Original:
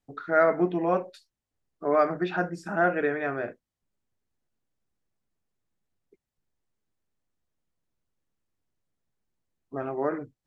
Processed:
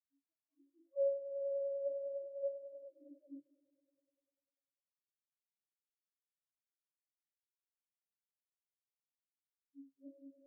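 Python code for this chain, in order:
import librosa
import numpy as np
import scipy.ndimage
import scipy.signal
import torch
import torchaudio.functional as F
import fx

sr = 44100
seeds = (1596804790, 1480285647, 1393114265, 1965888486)

y = scipy.signal.sosfilt(scipy.signal.butter(2, 280.0, 'highpass', fs=sr, output='sos'), x)
y = fx.over_compress(y, sr, threshold_db=-26.0, ratio=-0.5)
y = fx.octave_resonator(y, sr, note='C#', decay_s=0.53)
y = 10.0 ** (-40.0 / 20.0) * np.tanh(y / 10.0 ** (-40.0 / 20.0))
y = fx.echo_swell(y, sr, ms=99, loudest=5, wet_db=-6)
y = fx.spectral_expand(y, sr, expansion=4.0)
y = y * 10.0 ** (7.5 / 20.0)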